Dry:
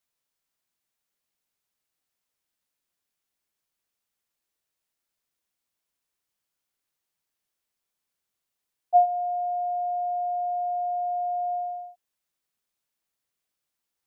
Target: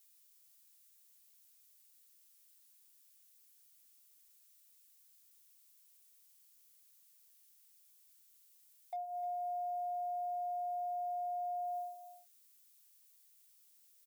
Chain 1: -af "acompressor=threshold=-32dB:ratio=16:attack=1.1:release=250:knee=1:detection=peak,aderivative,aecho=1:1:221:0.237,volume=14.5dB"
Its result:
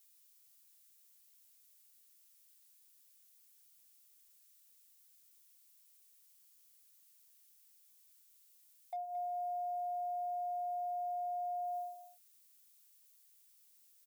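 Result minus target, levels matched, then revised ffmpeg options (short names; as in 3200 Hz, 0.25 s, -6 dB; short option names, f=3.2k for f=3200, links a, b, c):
echo 83 ms early
-af "acompressor=threshold=-32dB:ratio=16:attack=1.1:release=250:knee=1:detection=peak,aderivative,aecho=1:1:304:0.237,volume=14.5dB"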